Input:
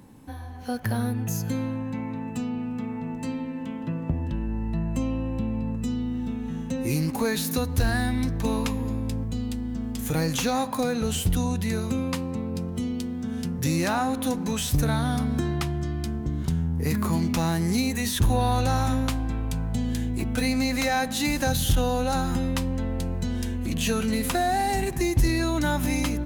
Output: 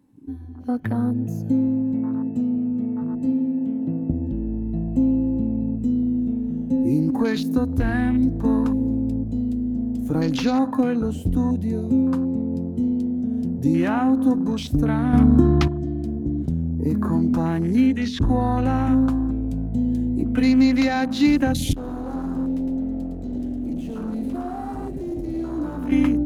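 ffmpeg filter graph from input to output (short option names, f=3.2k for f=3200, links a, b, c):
-filter_complex "[0:a]asettb=1/sr,asplit=3[a][b][c];[a]atrim=end=15.134[d];[b]atrim=start=15.13:end=15.68,asetpts=PTS-STARTPTS,afade=t=in:d=0.004:c=qsin,afade=t=out:st=0.546:d=0.004:c=qsin,acontrast=37,lowshelf=f=70:g=11.5[e];[c]atrim=start=15.676[f];[d][e]acrossfade=d=0.004:c1=hsin:c2=qsin[g];[g][f]acrossfade=d=0.004:c1=qsin:c2=hsin,asettb=1/sr,asplit=3[h][i][j];[h]atrim=end=17.874[k];[i]atrim=start=17.87:end=18.29,asetpts=PTS-STARTPTS,afade=t=in:d=0.004:c=qsin,afade=t=out:st=0.416:d=0.004:c=qsin,lowpass=7.2k,aeval=exprs='sgn(val(0))*max(abs(val(0))-0.00473,0)':c=same[l];[j]atrim=start=18.286[m];[k][l]acrossfade=d=0.004:c1=hsin:c2=qsin[n];[n][m]acrossfade=d=0.004:c1=qsin:c2=hsin,asettb=1/sr,asplit=3[o][p][q];[o]atrim=end=21.734[r];[p]atrim=start=21.73:end=25.92,asetpts=PTS-STARTPTS,afade=t=in:d=0.004:c=qsin,afade=t=out:st=4.186:d=0.004:c=qsin,acrossover=split=260|5400[s][t][u];[s]acompressor=threshold=-27dB:ratio=4[v];[t]acompressor=threshold=-28dB:ratio=4[w];[u]acompressor=threshold=-42dB:ratio=4[x];[v][w][x]amix=inputs=3:normalize=0,asoftclip=type=hard:threshold=-31.5dB,aecho=1:1:110:0.596,atrim=end_sample=184779[y];[q]atrim=start=25.916[z];[r][y]acrossfade=d=0.004:c1=hsin:c2=qsin[aa];[aa][z]acrossfade=d=0.004:c1=qsin:c2=hsin,afwtdn=0.02,equalizer=f=280:w=2.9:g=12.5"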